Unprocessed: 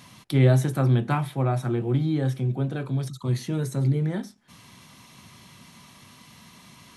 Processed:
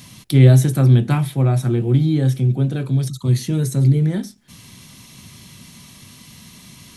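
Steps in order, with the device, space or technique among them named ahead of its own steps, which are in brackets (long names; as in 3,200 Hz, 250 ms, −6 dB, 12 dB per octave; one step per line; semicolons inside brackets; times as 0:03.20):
smiley-face EQ (low-shelf EQ 81 Hz +6 dB; parametric band 990 Hz −8.5 dB 2 octaves; high-shelf EQ 6,300 Hz +4.5 dB)
level +7.5 dB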